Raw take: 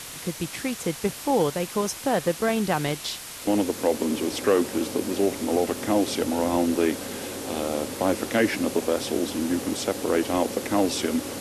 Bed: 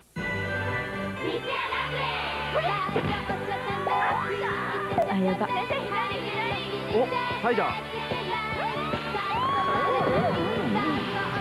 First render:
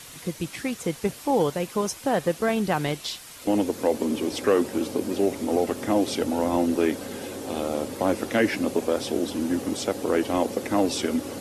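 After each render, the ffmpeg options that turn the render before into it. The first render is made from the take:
ffmpeg -i in.wav -af "afftdn=noise_reduction=7:noise_floor=-39" out.wav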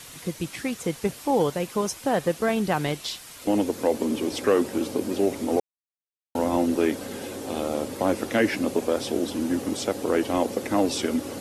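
ffmpeg -i in.wav -filter_complex "[0:a]asplit=3[link_01][link_02][link_03];[link_01]atrim=end=5.6,asetpts=PTS-STARTPTS,afade=type=out:start_time=5.596:duration=0.004:curve=hsin[link_04];[link_02]atrim=start=5.6:end=6.35,asetpts=PTS-STARTPTS,volume=0[link_05];[link_03]atrim=start=6.35,asetpts=PTS-STARTPTS,afade=type=in:duration=0.004:curve=hsin[link_06];[link_04][link_05][link_06]concat=n=3:v=0:a=1" out.wav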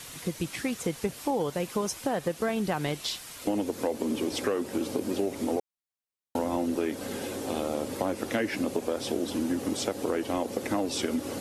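ffmpeg -i in.wav -af "acompressor=threshold=-25dB:ratio=5" out.wav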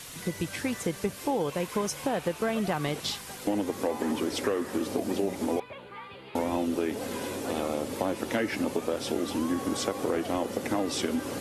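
ffmpeg -i in.wav -i bed.wav -filter_complex "[1:a]volume=-15.5dB[link_01];[0:a][link_01]amix=inputs=2:normalize=0" out.wav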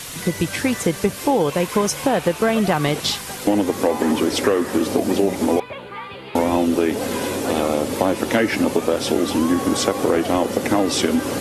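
ffmpeg -i in.wav -af "volume=10.5dB" out.wav

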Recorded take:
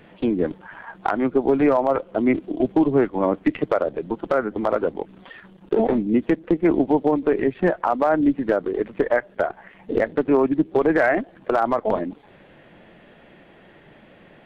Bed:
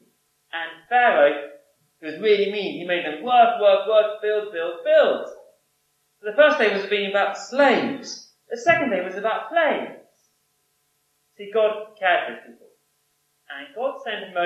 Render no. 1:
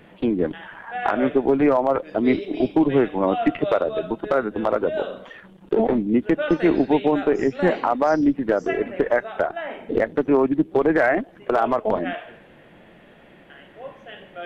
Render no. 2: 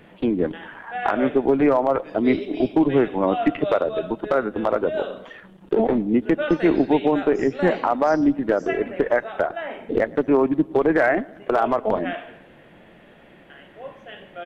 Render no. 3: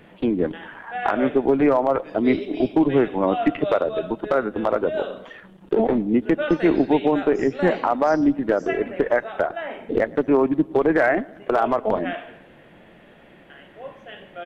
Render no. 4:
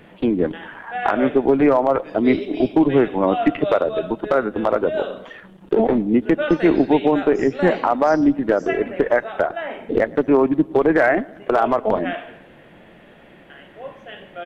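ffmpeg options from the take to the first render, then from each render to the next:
ffmpeg -i in.wav -i bed.wav -filter_complex "[1:a]volume=-12dB[link_01];[0:a][link_01]amix=inputs=2:normalize=0" out.wav
ffmpeg -i in.wav -filter_complex "[0:a]asplit=2[link_01][link_02];[link_02]adelay=111,lowpass=frequency=2000:poles=1,volume=-22dB,asplit=2[link_03][link_04];[link_04]adelay=111,lowpass=frequency=2000:poles=1,volume=0.55,asplit=2[link_05][link_06];[link_06]adelay=111,lowpass=frequency=2000:poles=1,volume=0.55,asplit=2[link_07][link_08];[link_08]adelay=111,lowpass=frequency=2000:poles=1,volume=0.55[link_09];[link_01][link_03][link_05][link_07][link_09]amix=inputs=5:normalize=0" out.wav
ffmpeg -i in.wav -af anull out.wav
ffmpeg -i in.wav -af "volume=2.5dB" out.wav

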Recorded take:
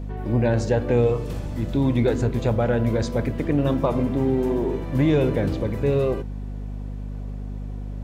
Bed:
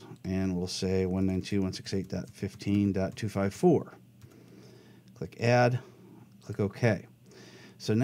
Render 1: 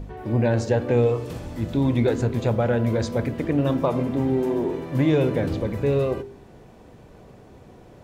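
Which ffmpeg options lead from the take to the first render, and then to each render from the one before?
ffmpeg -i in.wav -af "bandreject=frequency=50:width_type=h:width=4,bandreject=frequency=100:width_type=h:width=4,bandreject=frequency=150:width_type=h:width=4,bandreject=frequency=200:width_type=h:width=4,bandreject=frequency=250:width_type=h:width=4,bandreject=frequency=300:width_type=h:width=4,bandreject=frequency=350:width_type=h:width=4,bandreject=frequency=400:width_type=h:width=4" out.wav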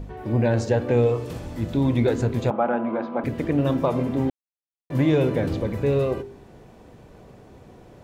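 ffmpeg -i in.wav -filter_complex "[0:a]asettb=1/sr,asplit=3[link_01][link_02][link_03];[link_01]atrim=end=2.504[link_04];[link_02]atrim=start=2.5:end=3.24,asetpts=PTS-STARTPTS,afade=type=in:duration=0.004:curve=qsin,afade=type=out:start_time=0.736:duration=0.004:curve=qsin,highpass=frequency=230:width=0.5412,highpass=frequency=230:width=1.3066,equalizer=frequency=270:width_type=q:width=4:gain=4,equalizer=frequency=450:width_type=q:width=4:gain=-8,equalizer=frequency=800:width_type=q:width=4:gain=9,equalizer=frequency=1200:width_type=q:width=4:gain=8,equalizer=frequency=1900:width_type=q:width=4:gain=-8,lowpass=frequency=2500:width=0.5412,lowpass=frequency=2500:width=1.3066[link_05];[link_03]atrim=start=3.236[link_06];[link_04][link_05]acrossfade=duration=0.004:curve1=hsin:curve2=qsin[link_07];[link_07][link_06]acrossfade=duration=0.004:curve1=qsin:curve2=hsin,asplit=3[link_08][link_09][link_10];[link_08]atrim=end=4.3,asetpts=PTS-STARTPTS,afade=type=out:start_time=4.296:duration=0.004:curve=hsin[link_11];[link_09]atrim=start=4.3:end=4.9,asetpts=PTS-STARTPTS,volume=0[link_12];[link_10]atrim=start=4.9,asetpts=PTS-STARTPTS,afade=type=in:duration=0.004:curve=hsin[link_13];[link_11][link_12][link_13]concat=n=3:v=0:a=1" out.wav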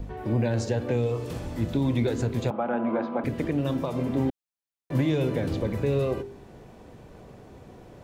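ffmpeg -i in.wav -filter_complex "[0:a]acrossover=split=270|3000[link_01][link_02][link_03];[link_02]acompressor=threshold=-22dB:ratio=6[link_04];[link_01][link_04][link_03]amix=inputs=3:normalize=0,acrossover=split=2700[link_05][link_06];[link_05]alimiter=limit=-16dB:level=0:latency=1:release=427[link_07];[link_07][link_06]amix=inputs=2:normalize=0" out.wav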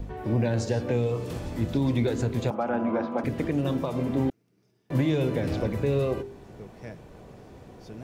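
ffmpeg -i in.wav -i bed.wav -filter_complex "[1:a]volume=-16dB[link_01];[0:a][link_01]amix=inputs=2:normalize=0" out.wav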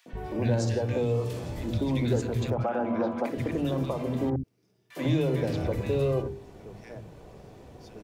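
ffmpeg -i in.wav -filter_complex "[0:a]acrossover=split=220|1500[link_01][link_02][link_03];[link_02]adelay=60[link_04];[link_01]adelay=130[link_05];[link_05][link_04][link_03]amix=inputs=3:normalize=0" out.wav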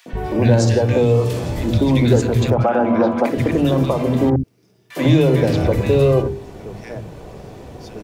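ffmpeg -i in.wav -af "volume=12dB" out.wav

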